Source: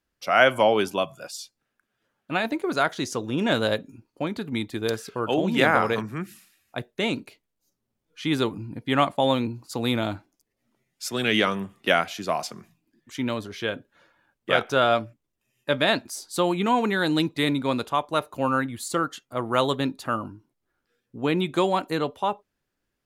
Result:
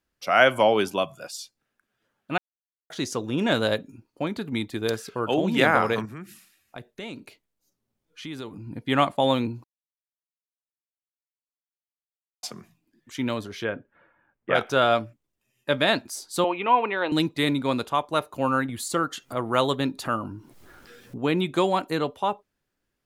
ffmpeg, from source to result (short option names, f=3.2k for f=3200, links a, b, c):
-filter_complex "[0:a]asettb=1/sr,asplit=3[a][b][c];[a]atrim=end=6.054[d];[b]atrim=start=6.05:end=8.67,asetpts=PTS-STARTPTS,afade=t=in:d=0.004:c=qsin,afade=t=out:st=2.616:d=0.004:c=qsin,acompressor=threshold=-38dB:ratio=2.5:attack=3.2:release=140:knee=1:detection=peak[e];[c]atrim=start=8.666[f];[d][e]acrossfade=d=0.004:c1=hsin:c2=qsin[g];[g][f]acrossfade=d=0.004:c1=qsin:c2=hsin,asplit=3[h][i][j];[h]afade=t=out:st=13.63:d=0.02[k];[i]lowpass=f=2.3k:w=0.5412,lowpass=f=2.3k:w=1.3066,afade=t=in:st=13.63:d=0.02,afade=t=out:st=14.54:d=0.02[l];[j]afade=t=in:st=14.54:d=0.02[m];[k][l][m]amix=inputs=3:normalize=0,asettb=1/sr,asplit=3[n][o][p];[n]atrim=end=16.444[q];[o]atrim=start=16.44:end=17.12,asetpts=PTS-STARTPTS,afade=t=in:d=0.004:c=qsin,afade=t=out:st=0.676:d=0.004:c=qsin,highpass=430,equalizer=f=550:t=q:w=4:g=4,equalizer=f=1k:t=q:w=4:g=5,equalizer=f=1.6k:t=q:w=4:g=-5,equalizer=f=2.6k:t=q:w=4:g=7,lowpass=f=2.9k:w=0.5412,lowpass=f=2.9k:w=1.3066[r];[p]atrim=start=17.116[s];[q][r]acrossfade=d=0.004:c1=hsin:c2=qsin[t];[t][s]acrossfade=d=0.004:c1=qsin:c2=hsin,asettb=1/sr,asplit=3[u][v][w];[u]atrim=end=18.694[x];[v]atrim=start=18.69:end=21.18,asetpts=PTS-STARTPTS,afade=t=in:d=0.004:c=qsin,afade=t=out:st=2.486:d=0.004:c=qsin,acompressor=mode=upward:threshold=-27dB:ratio=2.5:attack=3.2:release=140:knee=2.83:detection=peak[y];[w]atrim=start=21.176[z];[x][y]acrossfade=d=0.004:c1=hsin:c2=qsin[aa];[aa][z]acrossfade=d=0.004:c1=qsin:c2=hsin,asplit=5[ab][ac][ad][ae][af];[ab]atrim=end=2.38,asetpts=PTS-STARTPTS,afade=t=out:st=2.376:d=0.004:c=hsin[ag];[ac]atrim=start=2.38:end=2.9,asetpts=PTS-STARTPTS,volume=0[ah];[ad]atrim=start=2.9:end=9.64,asetpts=PTS-STARTPTS,afade=t=in:d=0.004:c=hsin,afade=t=out:st=6.736:d=0.004:c=hsin[ai];[ae]atrim=start=9.64:end=12.43,asetpts=PTS-STARTPTS,volume=0[aj];[af]atrim=start=12.43,asetpts=PTS-STARTPTS,afade=t=in:d=0.004:c=hsin[ak];[ag][ah][ai][aj][ak]concat=n=5:v=0:a=1"